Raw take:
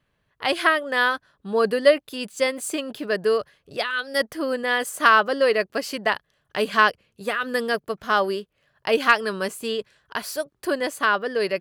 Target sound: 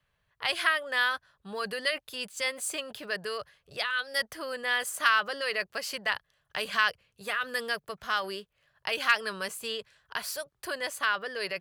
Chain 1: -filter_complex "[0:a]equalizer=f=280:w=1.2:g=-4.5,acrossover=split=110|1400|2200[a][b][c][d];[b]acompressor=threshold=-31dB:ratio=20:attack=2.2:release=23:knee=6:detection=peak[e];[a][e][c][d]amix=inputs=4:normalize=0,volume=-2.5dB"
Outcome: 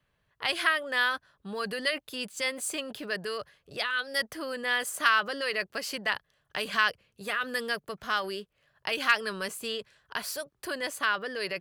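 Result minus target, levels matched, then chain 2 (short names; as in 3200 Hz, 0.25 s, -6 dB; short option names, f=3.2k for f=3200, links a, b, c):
250 Hz band +5.5 dB
-filter_complex "[0:a]equalizer=f=280:w=1.2:g=-14,acrossover=split=110|1400|2200[a][b][c][d];[b]acompressor=threshold=-31dB:ratio=20:attack=2.2:release=23:knee=6:detection=peak[e];[a][e][c][d]amix=inputs=4:normalize=0,volume=-2.5dB"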